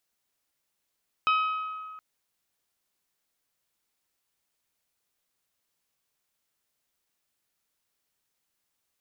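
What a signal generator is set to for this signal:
struck glass bell, length 0.72 s, lowest mode 1,270 Hz, decay 1.97 s, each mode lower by 6.5 dB, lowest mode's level −20 dB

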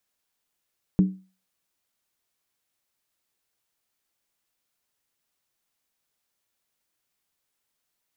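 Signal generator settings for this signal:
struck skin, lowest mode 188 Hz, decay 0.34 s, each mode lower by 10.5 dB, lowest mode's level −11.5 dB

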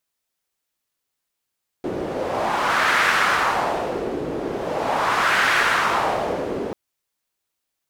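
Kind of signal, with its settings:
wind from filtered noise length 4.89 s, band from 370 Hz, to 1,600 Hz, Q 2, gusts 2, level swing 9 dB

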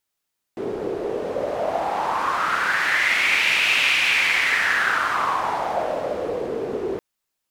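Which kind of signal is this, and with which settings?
wind from filtered noise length 6.42 s, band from 400 Hz, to 2,500 Hz, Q 4.7, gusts 1, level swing 8 dB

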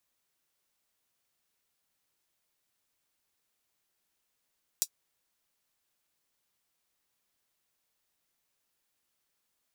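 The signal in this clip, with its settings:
closed synth hi-hat, high-pass 5,500 Hz, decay 0.07 s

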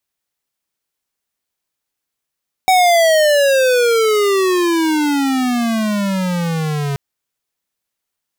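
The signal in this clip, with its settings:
pitch glide with a swell square, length 4.28 s, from 759 Hz, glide −29.5 semitones, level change −9 dB, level −10.5 dB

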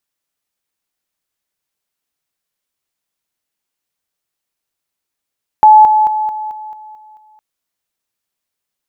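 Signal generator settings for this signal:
level staircase 859 Hz −1.5 dBFS, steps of −6 dB, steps 8, 0.22 s 0.00 s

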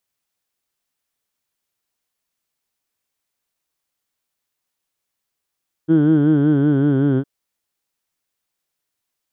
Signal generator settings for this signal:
vowel from formants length 1.36 s, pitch 156 Hz, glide −2.5 semitones, F1 330 Hz, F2 1,500 Hz, F3 3,200 Hz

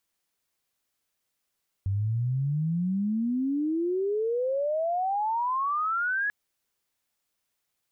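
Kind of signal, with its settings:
glide logarithmic 95 Hz → 1,700 Hz −24 dBFS → −24.5 dBFS 4.44 s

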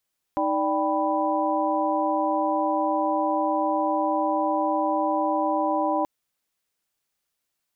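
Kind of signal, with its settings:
held notes D#4/D5/G5/B5 sine, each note −26.5 dBFS 5.68 s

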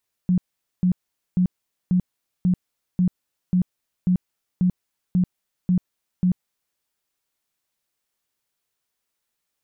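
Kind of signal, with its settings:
tone bursts 181 Hz, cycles 16, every 0.54 s, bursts 12, −15 dBFS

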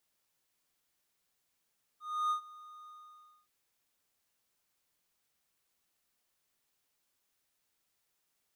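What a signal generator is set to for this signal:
note with an ADSR envelope triangle 1,230 Hz, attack 306 ms, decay 99 ms, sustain −21.5 dB, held 0.88 s, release 593 ms −25.5 dBFS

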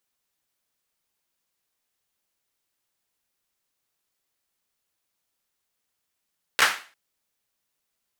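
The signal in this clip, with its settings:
synth clap length 0.35 s, bursts 3, apart 14 ms, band 1,600 Hz, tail 0.38 s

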